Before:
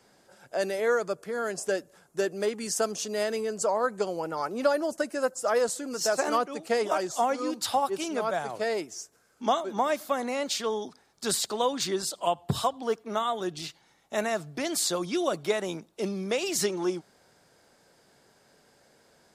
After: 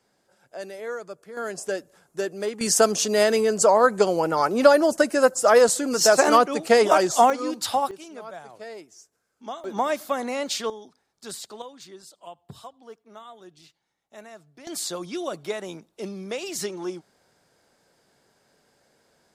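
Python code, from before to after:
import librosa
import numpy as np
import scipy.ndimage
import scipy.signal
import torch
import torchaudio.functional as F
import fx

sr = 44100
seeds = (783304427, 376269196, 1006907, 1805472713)

y = fx.gain(x, sr, db=fx.steps((0.0, -7.5), (1.37, 0.0), (2.61, 9.5), (7.3, 2.5), (7.91, -10.0), (9.64, 2.0), (10.7, -9.0), (11.62, -15.5), (14.67, -3.0)))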